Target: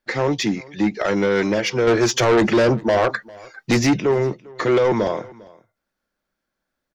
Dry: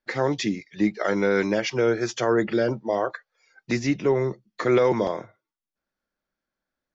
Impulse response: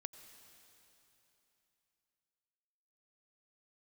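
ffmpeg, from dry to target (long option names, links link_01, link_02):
-filter_complex "[0:a]asettb=1/sr,asplit=3[link_01][link_02][link_03];[link_01]atrim=end=1.874[link_04];[link_02]atrim=start=1.87:end=4,asetpts=PTS-STARTPTS,afade=type=in:duration=0.004:curve=qsin,afade=type=out:start_time=2.126:duration=0.004:curve=qsin,acontrast=85[link_05];[link_03]atrim=start=3.996[link_06];[link_04][link_05]acrossfade=duration=0.004:curve1=hsin:curve2=qsin[link_07];[link_07][link_06]acrossfade=duration=0.004:curve1=qsin:curve2=hsin,asoftclip=type=tanh:threshold=-18dB,aecho=1:1:400:0.0708,volume=6dB"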